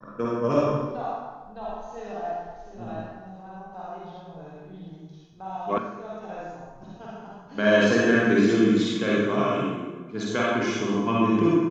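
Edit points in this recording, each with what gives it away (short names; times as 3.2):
5.78 sound cut off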